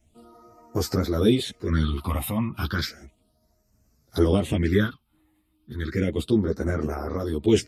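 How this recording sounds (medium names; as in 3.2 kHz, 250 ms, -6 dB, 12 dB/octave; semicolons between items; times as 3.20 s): phasing stages 6, 0.33 Hz, lowest notch 400–3400 Hz; random-step tremolo; a shimmering, thickened sound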